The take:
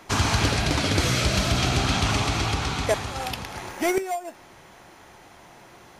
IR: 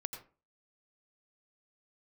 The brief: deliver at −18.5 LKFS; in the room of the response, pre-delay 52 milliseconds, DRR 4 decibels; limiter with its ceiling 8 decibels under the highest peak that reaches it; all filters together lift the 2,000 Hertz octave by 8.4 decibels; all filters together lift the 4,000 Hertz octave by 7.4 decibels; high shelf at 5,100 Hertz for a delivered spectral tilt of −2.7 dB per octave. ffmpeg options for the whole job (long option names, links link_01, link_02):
-filter_complex "[0:a]equalizer=frequency=2000:width_type=o:gain=8.5,equalizer=frequency=4000:width_type=o:gain=4.5,highshelf=frequency=5100:gain=4.5,alimiter=limit=-13dB:level=0:latency=1,asplit=2[link_01][link_02];[1:a]atrim=start_sample=2205,adelay=52[link_03];[link_02][link_03]afir=irnorm=-1:irlink=0,volume=-3dB[link_04];[link_01][link_04]amix=inputs=2:normalize=0,volume=2dB"